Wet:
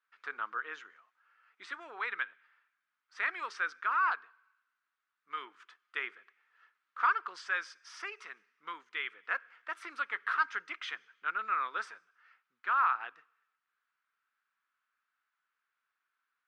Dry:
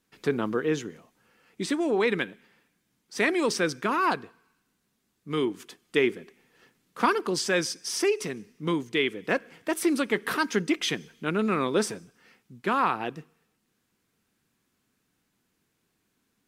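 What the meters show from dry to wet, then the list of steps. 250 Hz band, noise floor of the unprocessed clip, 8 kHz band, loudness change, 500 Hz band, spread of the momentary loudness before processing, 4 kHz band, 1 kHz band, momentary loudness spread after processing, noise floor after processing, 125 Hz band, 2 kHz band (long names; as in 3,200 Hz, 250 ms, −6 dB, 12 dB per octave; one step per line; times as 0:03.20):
−34.0 dB, −76 dBFS, −24.0 dB, −7.5 dB, −26.0 dB, 9 LU, −14.5 dB, −3.5 dB, 16 LU, below −85 dBFS, below −40 dB, −3.5 dB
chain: four-pole ladder band-pass 1,500 Hz, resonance 60%
level +4 dB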